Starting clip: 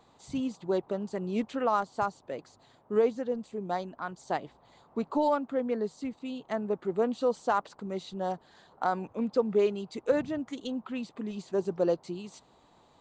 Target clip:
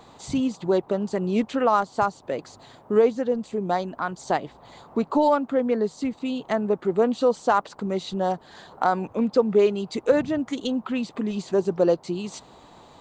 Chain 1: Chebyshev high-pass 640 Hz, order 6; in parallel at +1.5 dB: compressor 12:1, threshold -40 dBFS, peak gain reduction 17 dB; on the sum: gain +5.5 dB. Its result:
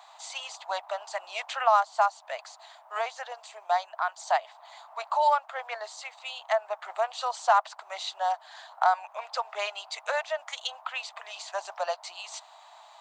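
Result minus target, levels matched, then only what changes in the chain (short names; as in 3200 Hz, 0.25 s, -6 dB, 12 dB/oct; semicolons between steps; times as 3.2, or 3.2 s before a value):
500 Hz band -5.0 dB
remove: Chebyshev high-pass 640 Hz, order 6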